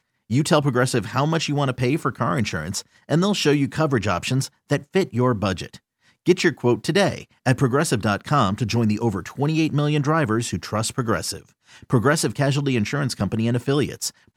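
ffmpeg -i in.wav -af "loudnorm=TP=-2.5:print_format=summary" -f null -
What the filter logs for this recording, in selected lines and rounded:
Input Integrated:    -21.9 LUFS
Input True Peak:      -3.7 dBTP
Input LRA:             1.4 LU
Input Threshold:     -32.2 LUFS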